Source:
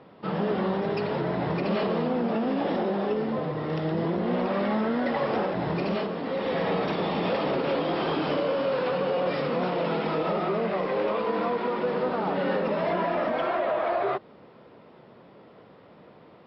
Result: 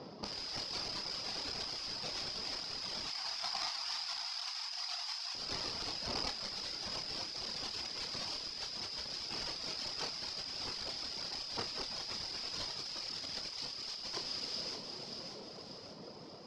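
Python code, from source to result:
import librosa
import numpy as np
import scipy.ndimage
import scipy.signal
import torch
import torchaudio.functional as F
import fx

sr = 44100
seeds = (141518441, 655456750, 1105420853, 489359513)

y = scipy.ndimage.median_filter(x, 15, mode='constant')
y = (np.mod(10.0 ** (28.0 / 20.0) * y + 1.0, 2.0) - 1.0) / 10.0 ** (28.0 / 20.0)
y = fx.brickwall_highpass(y, sr, low_hz=660.0, at=(3.07, 5.35))
y = fx.dereverb_blind(y, sr, rt60_s=1.2)
y = fx.lowpass_res(y, sr, hz=5000.0, q=16.0)
y = fx.peak_eq(y, sr, hz=1700.0, db=-5.0, octaves=0.82)
y = fx.echo_feedback(y, sr, ms=585, feedback_pct=51, wet_db=-17.5)
y = fx.over_compress(y, sr, threshold_db=-37.0, ratio=-1.0)
y = fx.doubler(y, sr, ms=30.0, db=-8.0)
y = y * librosa.db_to_amplitude(-5.0)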